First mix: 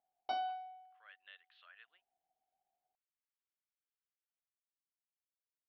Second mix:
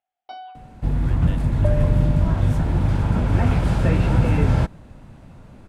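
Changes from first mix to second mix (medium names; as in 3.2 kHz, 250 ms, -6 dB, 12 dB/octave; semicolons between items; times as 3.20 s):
speech +11.5 dB; second sound: unmuted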